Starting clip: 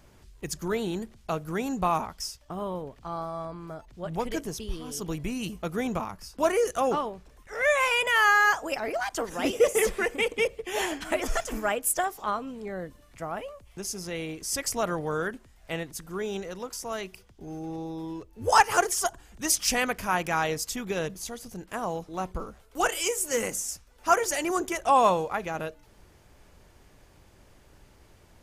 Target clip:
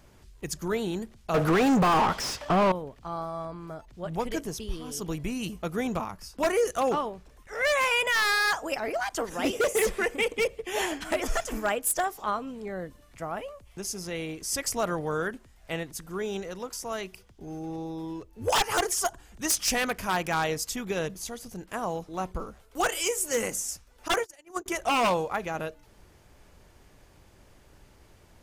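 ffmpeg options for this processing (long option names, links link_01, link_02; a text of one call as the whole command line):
ffmpeg -i in.wav -filter_complex "[0:a]asettb=1/sr,asplit=3[link_01][link_02][link_03];[link_01]atrim=end=1.344[link_04];[link_02]atrim=start=1.34:end=2.72,asetpts=PTS-STARTPTS,afade=type=in:duration=0.004:curve=qsin,afade=type=out:start_time=1.376:duration=0.004:curve=qsin,asplit=2[link_05][link_06];[link_06]highpass=frequency=720:poles=1,volume=36dB,asoftclip=type=tanh:threshold=-13.5dB[link_07];[link_05][link_07]amix=inputs=2:normalize=0,lowpass=frequency=1400:poles=1,volume=-6dB[link_08];[link_03]atrim=start=2.716[link_09];[link_04][link_08]acrossfade=duration=0.004:curve1=hsin:curve2=qsin[link_10];[link_10][link_09]acrossfade=duration=0.004:curve1=qsin:curve2=hsin,asettb=1/sr,asplit=3[link_11][link_12][link_13];[link_11]atrim=end=24.084[link_14];[link_12]atrim=start=24.08:end=24.66,asetpts=PTS-STARTPTS,afade=type=in:duration=0.004:curve=qsin,afade=type=out:start_time=0.576:duration=0.004:curve=qsin,agate=range=-35dB:threshold=-24dB:ratio=16:detection=peak[link_15];[link_13]atrim=start=24.656[link_16];[link_14][link_15]acrossfade=duration=0.004:curve1=hsin:curve2=qsin[link_17];[link_17][link_16]acrossfade=duration=0.004:curve1=qsin:curve2=hsin,aeval=exprs='0.133*(abs(mod(val(0)/0.133+3,4)-2)-1)':channel_layout=same" out.wav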